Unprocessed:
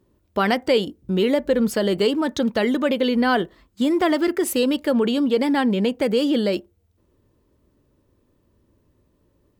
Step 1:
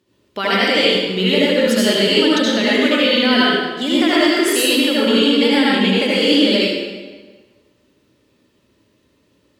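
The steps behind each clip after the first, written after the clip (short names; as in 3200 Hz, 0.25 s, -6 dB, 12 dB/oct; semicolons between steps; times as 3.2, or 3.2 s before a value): weighting filter D; in parallel at +3 dB: limiter -11 dBFS, peak gain reduction 10.5 dB; on the sum: reverb RT60 1.4 s, pre-delay 68 ms, DRR -7.5 dB; gain -10 dB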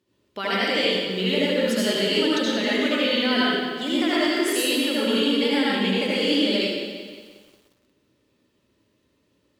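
lo-fi delay 0.178 s, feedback 55%, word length 7-bit, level -11.5 dB; gain -7.5 dB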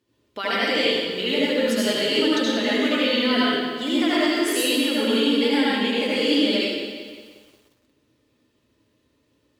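notch comb 190 Hz; gain +2 dB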